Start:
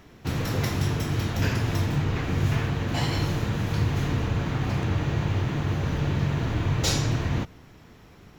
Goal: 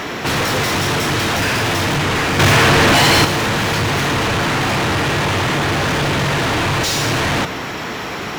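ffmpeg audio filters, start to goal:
-filter_complex "[0:a]asplit=2[a][b];[b]highpass=f=720:p=1,volume=40dB,asoftclip=type=tanh:threshold=-10.5dB[c];[a][c]amix=inputs=2:normalize=0,lowpass=f=4.6k:p=1,volume=-6dB,asettb=1/sr,asplit=3[d][e][f];[d]atrim=end=2.394[g];[e]atrim=start=2.39:end=3.25,asetpts=PTS-STARTPTS,afade=t=in:d=0.004:c=qsin,afade=t=out:st=0.856:d=0.004:c=qsin,acontrast=67[h];[f]atrim=start=3.246[i];[g][h]acrossfade=d=0.004:c1=hsin:c2=qsin[j];[j][i]acrossfade=d=0.004:c1=qsin:c2=hsin"

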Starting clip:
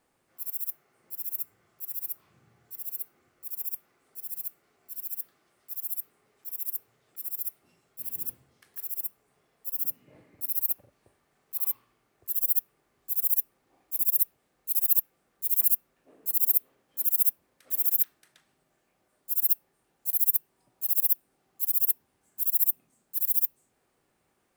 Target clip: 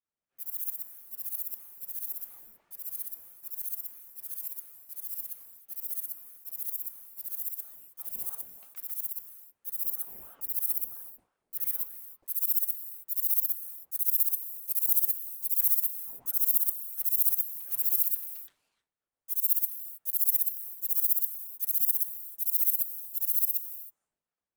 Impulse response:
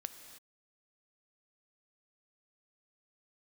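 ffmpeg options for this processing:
-filter_complex "[0:a]agate=range=-33dB:threshold=-58dB:ratio=3:detection=peak,asplit=2[a][b];[1:a]atrim=start_sample=2205,adelay=121[c];[b][c]afir=irnorm=-1:irlink=0,volume=1dB[d];[a][d]amix=inputs=2:normalize=0,aeval=exprs='val(0)*sin(2*PI*580*n/s+580*0.85/3*sin(2*PI*3*n/s))':c=same"

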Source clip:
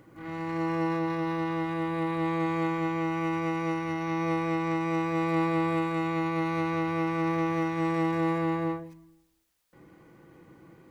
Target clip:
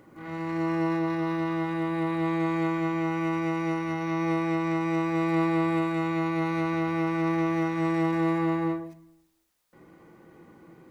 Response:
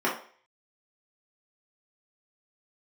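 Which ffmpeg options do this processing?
-filter_complex "[0:a]bandreject=f=50:t=h:w=6,bandreject=f=100:t=h:w=6,bandreject=f=150:t=h:w=6,bandreject=f=200:t=h:w=6,asplit=2[a][b];[1:a]atrim=start_sample=2205,atrim=end_sample=4410,asetrate=28224,aresample=44100[c];[b][c]afir=irnorm=-1:irlink=0,volume=-22.5dB[d];[a][d]amix=inputs=2:normalize=0"

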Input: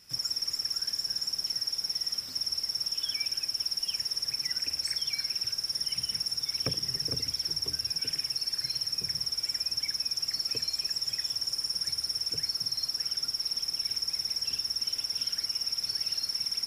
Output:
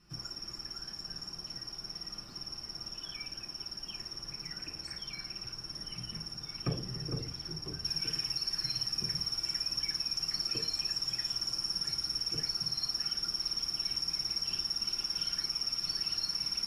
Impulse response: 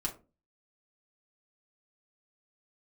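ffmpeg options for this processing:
-filter_complex "[0:a]asetnsamples=n=441:p=0,asendcmd='7.84 lowpass f 3800',lowpass=f=1.2k:p=1[a];[1:a]atrim=start_sample=2205[b];[a][b]afir=irnorm=-1:irlink=0,volume=-1dB"

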